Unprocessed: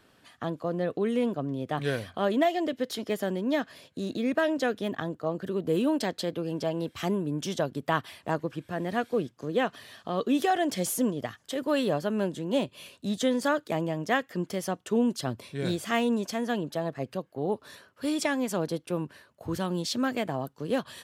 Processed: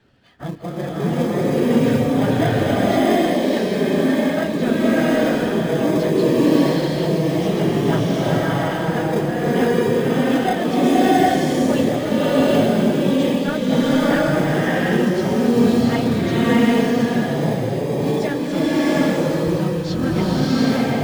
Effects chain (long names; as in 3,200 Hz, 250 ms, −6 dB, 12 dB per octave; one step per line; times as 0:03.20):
random phases in long frames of 50 ms
low-pass filter 4,600 Hz 12 dB per octave
low-shelf EQ 100 Hz +11.5 dB
notch filter 1,100 Hz, Q 7.2
in parallel at −9 dB: decimation without filtering 31×
on the sum: slow-attack reverb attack 750 ms, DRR −8.5 dB